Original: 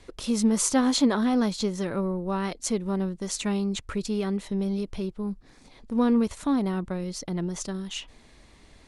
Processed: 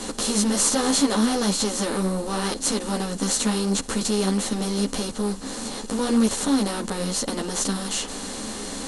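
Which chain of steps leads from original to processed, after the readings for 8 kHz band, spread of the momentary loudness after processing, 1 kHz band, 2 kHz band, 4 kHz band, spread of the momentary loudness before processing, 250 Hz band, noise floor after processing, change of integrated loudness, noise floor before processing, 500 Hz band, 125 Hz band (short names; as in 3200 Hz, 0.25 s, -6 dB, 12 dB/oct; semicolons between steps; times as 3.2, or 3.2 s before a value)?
+9.0 dB, 9 LU, +4.5 dB, +5.5 dB, +8.5 dB, 10 LU, +1.5 dB, -34 dBFS, +3.5 dB, -54 dBFS, +3.0 dB, +2.0 dB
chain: per-bin compression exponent 0.4; high shelf 5400 Hz +8.5 dB; ensemble effect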